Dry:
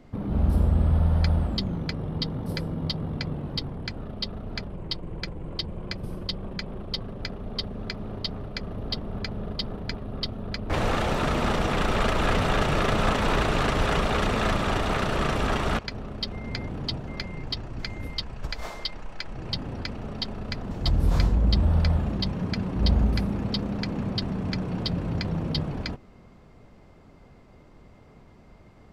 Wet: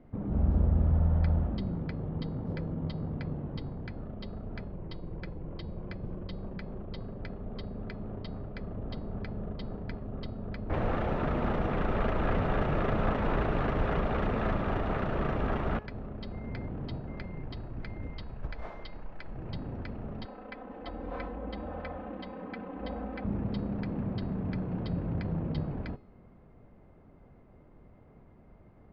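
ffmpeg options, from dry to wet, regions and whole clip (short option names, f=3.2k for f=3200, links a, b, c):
-filter_complex "[0:a]asettb=1/sr,asplit=3[a][b][c];[a]atrim=end=20.254[d];[b]atrim=start=20.25:end=23.25,asetpts=PTS-STARTPTS,afade=t=in:d=0.004:c=qsin,afade=t=out:st=2.996:d=0.004:c=qsin,acrossover=split=310 4300:gain=0.0891 1 0.0891[e][f][g];[e][f][g]amix=inputs=3:normalize=0,aecho=1:1:3.9:0.81,atrim=end_sample=132300[h];[c]atrim=start=23.246[i];[d][h]acrossfade=d=0.004:c1=hsin:c2=qsin[j];[j][i]acrossfade=d=0.004:c1=qsin:c2=hsin,lowpass=1.6k,equalizer=f=1.1k:w=1.5:g=-3,bandreject=f=423.5:t=h:w=4,bandreject=f=847:t=h:w=4,bandreject=f=1.2705k:t=h:w=4,bandreject=f=1.694k:t=h:w=4,bandreject=f=2.1175k:t=h:w=4,bandreject=f=2.541k:t=h:w=4,bandreject=f=2.9645k:t=h:w=4,bandreject=f=3.388k:t=h:w=4,bandreject=f=3.8115k:t=h:w=4,bandreject=f=4.235k:t=h:w=4,bandreject=f=4.6585k:t=h:w=4,bandreject=f=5.082k:t=h:w=4,bandreject=f=5.5055k:t=h:w=4,bandreject=f=5.929k:t=h:w=4,bandreject=f=6.3525k:t=h:w=4,bandreject=f=6.776k:t=h:w=4,bandreject=f=7.1995k:t=h:w=4,bandreject=f=7.623k:t=h:w=4,bandreject=f=8.0465k:t=h:w=4,bandreject=f=8.47k:t=h:w=4,bandreject=f=8.8935k:t=h:w=4,bandreject=f=9.317k:t=h:w=4,bandreject=f=9.7405k:t=h:w=4,bandreject=f=10.164k:t=h:w=4,bandreject=f=10.5875k:t=h:w=4,bandreject=f=11.011k:t=h:w=4,bandreject=f=11.4345k:t=h:w=4,bandreject=f=11.858k:t=h:w=4,bandreject=f=12.2815k:t=h:w=4,bandreject=f=12.705k:t=h:w=4,volume=-4dB"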